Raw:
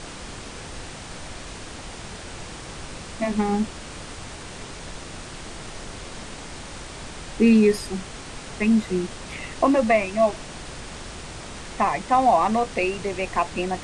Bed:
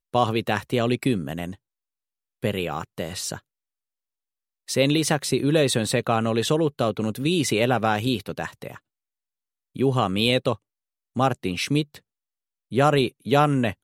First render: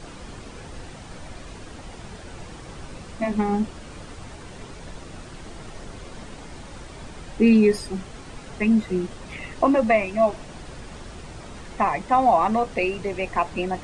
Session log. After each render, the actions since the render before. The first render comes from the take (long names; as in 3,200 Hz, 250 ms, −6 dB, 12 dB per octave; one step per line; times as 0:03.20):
broadband denoise 8 dB, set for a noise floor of −38 dBFS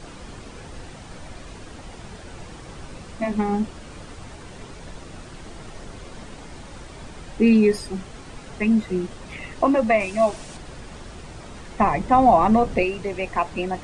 0:10.00–0:10.57: high-shelf EQ 4,400 Hz +11 dB
0:11.80–0:12.83: low-shelf EQ 430 Hz +9.5 dB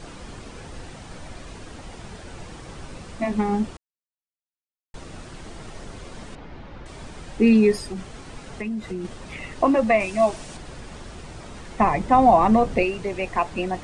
0:03.77–0:04.94: silence
0:06.35–0:06.86: high-frequency loss of the air 260 metres
0:07.77–0:09.05: downward compressor, threshold −26 dBFS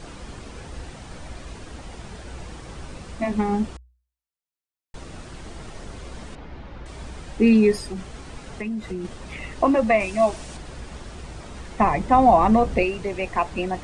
parametric band 61 Hz +11.5 dB 0.22 octaves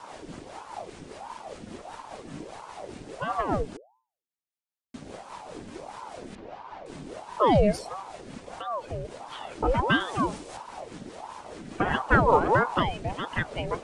rotating-speaker cabinet horn 5 Hz
ring modulator whose carrier an LFO sweeps 590 Hz, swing 65%, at 1.5 Hz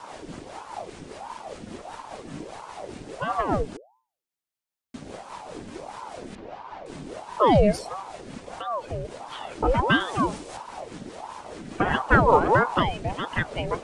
level +2.5 dB